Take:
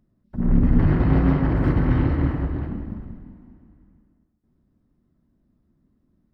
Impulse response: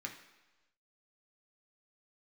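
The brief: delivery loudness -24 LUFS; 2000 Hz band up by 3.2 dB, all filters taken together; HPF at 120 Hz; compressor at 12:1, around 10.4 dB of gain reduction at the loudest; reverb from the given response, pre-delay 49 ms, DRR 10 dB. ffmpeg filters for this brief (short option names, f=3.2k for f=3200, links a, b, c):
-filter_complex "[0:a]highpass=120,equalizer=f=2k:t=o:g=4,acompressor=threshold=-26dB:ratio=12,asplit=2[a][b];[1:a]atrim=start_sample=2205,adelay=49[c];[b][c]afir=irnorm=-1:irlink=0,volume=-9.5dB[d];[a][d]amix=inputs=2:normalize=0,volume=7.5dB"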